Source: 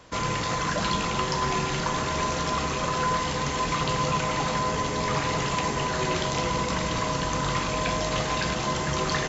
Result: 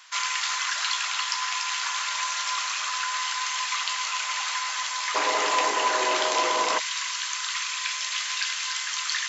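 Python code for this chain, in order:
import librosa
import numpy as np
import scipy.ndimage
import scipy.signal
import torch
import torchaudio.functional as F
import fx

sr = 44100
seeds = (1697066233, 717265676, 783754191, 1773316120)

y = x + 10.0 ** (-6.5 / 20.0) * np.pad(x, (int(290 * sr / 1000.0), 0))[:len(x)]
y = fx.rider(y, sr, range_db=10, speed_s=0.5)
y = fx.bessel_highpass(y, sr, hz=fx.steps((0.0, 1700.0), (5.14, 550.0), (6.78, 2100.0)), order=6)
y = F.gain(torch.from_numpy(y), 4.5).numpy()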